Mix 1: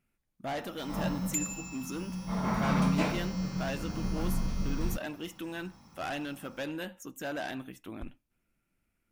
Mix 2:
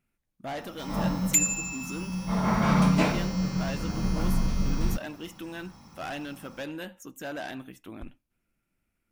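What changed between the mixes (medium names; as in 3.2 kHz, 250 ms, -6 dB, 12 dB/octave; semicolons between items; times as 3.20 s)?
first sound +5.5 dB; second sound +11.0 dB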